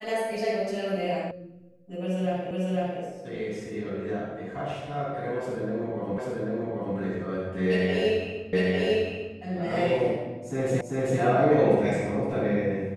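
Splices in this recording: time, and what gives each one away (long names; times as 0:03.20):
0:01.31: cut off before it has died away
0:02.51: the same again, the last 0.5 s
0:06.18: the same again, the last 0.79 s
0:08.53: the same again, the last 0.85 s
0:10.81: the same again, the last 0.39 s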